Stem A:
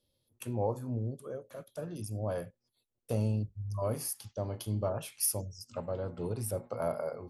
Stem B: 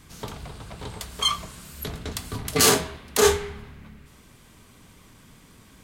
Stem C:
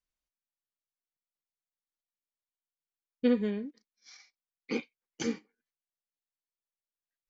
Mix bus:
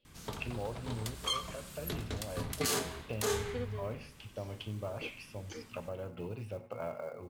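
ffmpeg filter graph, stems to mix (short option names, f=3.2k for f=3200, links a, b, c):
-filter_complex "[0:a]acompressor=threshold=-45dB:ratio=2,lowpass=f=2.7k:t=q:w=4.6,acrusher=bits=7:mode=log:mix=0:aa=0.000001,volume=1.5dB,asplit=2[a][b];[b]volume=-18.5dB[c];[1:a]adelay=50,volume=-6dB,asplit=2[d][e];[e]volume=-23dB[f];[2:a]highpass=f=300:w=0.5412,highpass=f=300:w=1.3066,adelay=300,volume=-11dB[g];[c][f]amix=inputs=2:normalize=0,aecho=0:1:92|184|276|368|460:1|0.35|0.122|0.0429|0.015[h];[a][d][g][h]amix=inputs=4:normalize=0,alimiter=limit=-22dB:level=0:latency=1:release=187"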